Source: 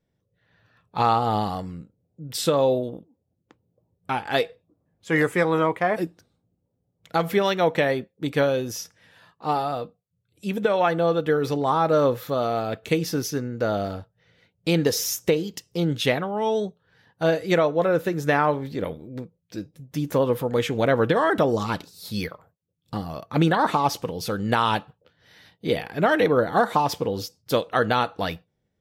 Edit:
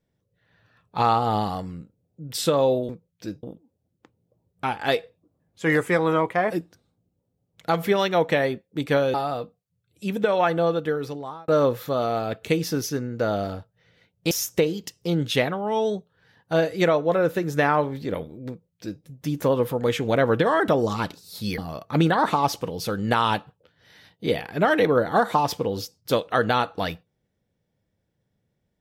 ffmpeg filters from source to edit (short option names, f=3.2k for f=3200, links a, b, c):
-filter_complex "[0:a]asplit=7[a][b][c][d][e][f][g];[a]atrim=end=2.892[h];[b]atrim=start=19.188:end=19.732[i];[c]atrim=start=2.888:end=8.602[j];[d]atrim=start=9.548:end=11.89,asetpts=PTS-STARTPTS,afade=t=out:st=1.472:d=0.87[k];[e]atrim=start=11.89:end=14.722,asetpts=PTS-STARTPTS,afade=t=in:d=0.004:c=hsin[l];[f]atrim=start=15.008:end=22.282[m];[g]atrim=start=22.988[n];[h][i]acrossfade=d=0.004:c1=hsin:c2=hsin[o];[o][j]acrossfade=d=0.004:c1=hsin:c2=hsin[p];[k][l]concat=n=2:v=0:a=1[q];[p][q]acrossfade=d=0.004:c1=hsin:c2=hsin[r];[r][m]acrossfade=d=0.004:c1=hsin:c2=hsin[s];[s][n]acrossfade=d=0.004:c1=hsin:c2=hsin"